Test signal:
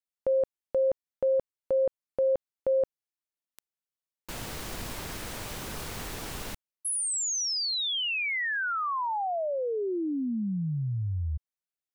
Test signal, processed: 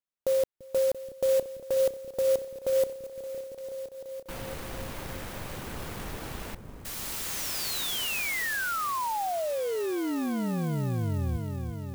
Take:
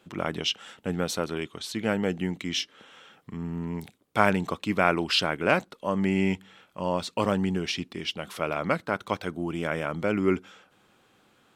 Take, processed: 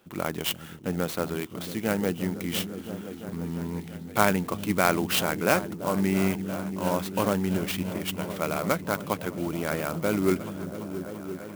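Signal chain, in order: high shelf 9000 Hz -11 dB; on a send: repeats that get brighter 0.34 s, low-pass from 200 Hz, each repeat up 1 oct, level -6 dB; on the sum: clock jitter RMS 0.044 ms

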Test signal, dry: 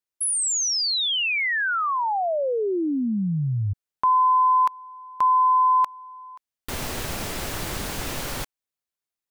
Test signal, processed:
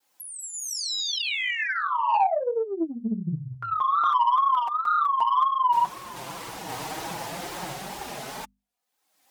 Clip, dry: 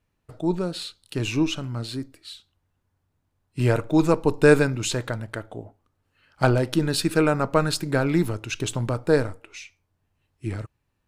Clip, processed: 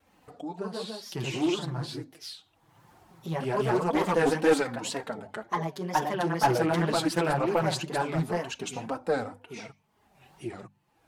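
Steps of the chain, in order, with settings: opening faded in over 0.99 s; bell 790 Hz +11 dB 0.42 oct; echoes that change speed 0.211 s, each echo +2 st, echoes 2; wow and flutter 130 cents; HPF 91 Hz 12 dB/oct; flange 2 Hz, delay 2 ms, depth 6.2 ms, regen +3%; soft clip -10.5 dBFS; upward compressor, threshold -31 dBFS; flange 0.22 Hz, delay 3.7 ms, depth 2.8 ms, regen -21%; notches 50/100/150/200/250 Hz; Doppler distortion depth 0.21 ms

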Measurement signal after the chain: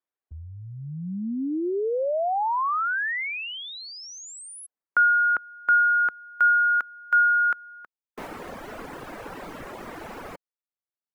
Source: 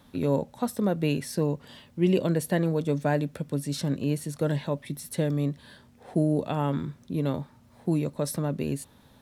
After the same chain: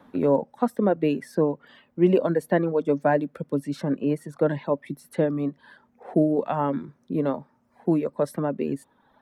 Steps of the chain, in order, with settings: three-band isolator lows -15 dB, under 200 Hz, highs -18 dB, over 2000 Hz; reverb removal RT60 1.1 s; gain +7 dB

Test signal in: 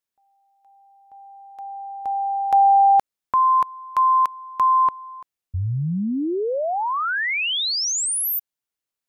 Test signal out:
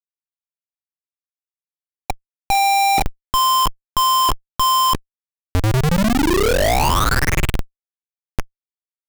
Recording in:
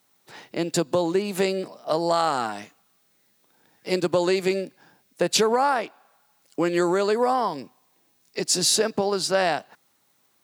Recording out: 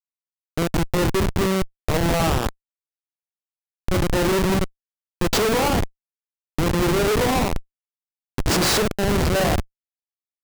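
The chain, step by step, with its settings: stepped spectrum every 50 ms; flutter echo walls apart 8.1 m, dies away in 0.32 s; Schmitt trigger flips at -22 dBFS; gain +7 dB

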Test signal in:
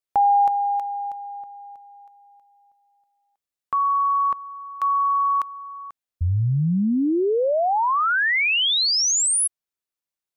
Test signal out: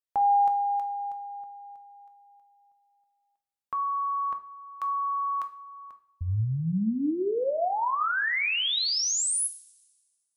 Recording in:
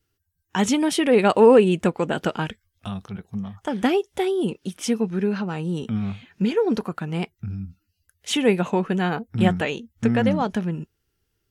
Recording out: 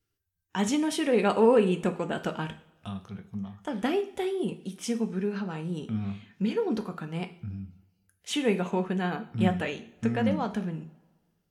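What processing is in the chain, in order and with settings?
two-slope reverb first 0.43 s, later 1.6 s, from -20 dB, DRR 7 dB; gain -7.5 dB

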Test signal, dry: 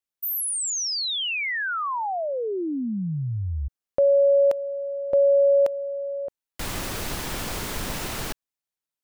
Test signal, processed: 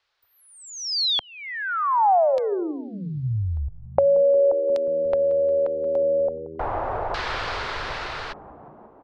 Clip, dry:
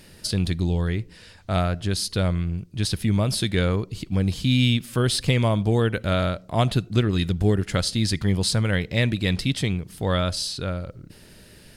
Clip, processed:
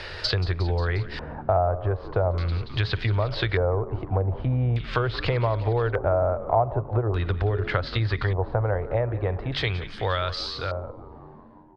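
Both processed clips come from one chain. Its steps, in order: ending faded out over 3.85 s; de-hum 141.3 Hz, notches 4; treble ducked by the level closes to 1100 Hz, closed at -17.5 dBFS; EQ curve 110 Hz 0 dB, 210 Hz -21 dB, 410 Hz +1 dB, 1400 Hz +8 dB, 3100 Hz 0 dB, 7500 Hz -5 dB; compressor 3:1, threshold -28 dBFS; high shelf 11000 Hz -8 dB; on a send: frequency-shifting echo 0.178 s, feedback 62%, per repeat -79 Hz, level -16 dB; on the sum: LFO low-pass square 0.42 Hz 780–4400 Hz; three-band squash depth 40%; gain +5 dB

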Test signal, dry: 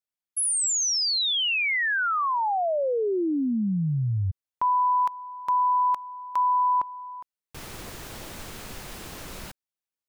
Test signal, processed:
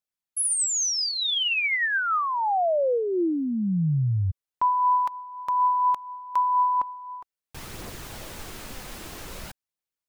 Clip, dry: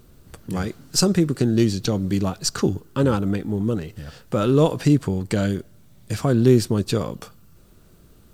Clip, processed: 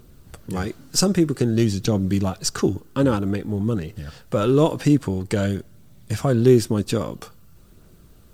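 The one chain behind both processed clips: dynamic EQ 4300 Hz, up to -6 dB, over -49 dBFS, Q 7.2; phaser 0.51 Hz, delay 4.1 ms, feedback 24%

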